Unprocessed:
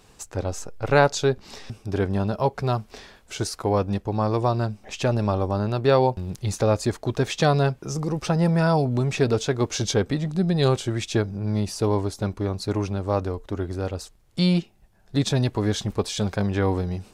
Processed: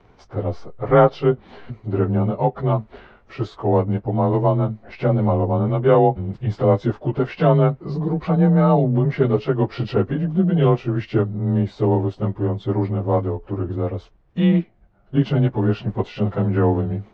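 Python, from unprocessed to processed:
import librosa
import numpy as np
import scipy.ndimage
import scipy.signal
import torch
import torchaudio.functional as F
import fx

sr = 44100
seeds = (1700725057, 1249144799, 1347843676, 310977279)

y = fx.partial_stretch(x, sr, pct=92)
y = scipy.signal.sosfilt(scipy.signal.butter(2, 1700.0, 'lowpass', fs=sr, output='sos'), y)
y = y * librosa.db_to_amplitude(5.5)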